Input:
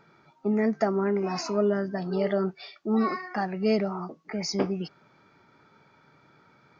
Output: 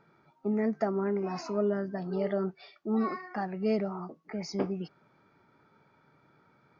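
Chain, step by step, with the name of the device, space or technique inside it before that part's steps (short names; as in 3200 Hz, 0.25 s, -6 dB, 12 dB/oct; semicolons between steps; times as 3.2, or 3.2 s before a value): behind a face mask (high shelf 2500 Hz -8 dB); gain -4 dB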